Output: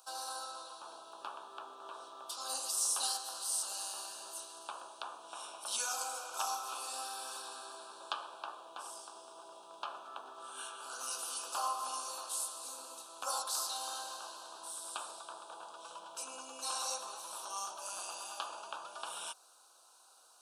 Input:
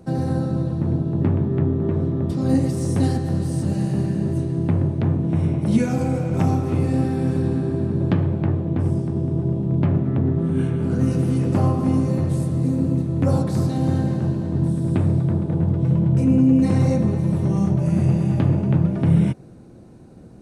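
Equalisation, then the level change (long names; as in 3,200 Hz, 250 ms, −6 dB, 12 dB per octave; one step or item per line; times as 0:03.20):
high-pass filter 1,100 Hz 24 dB per octave
Butterworth band-reject 2,000 Hz, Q 1.2
high-shelf EQ 6,000 Hz +6.5 dB
+3.0 dB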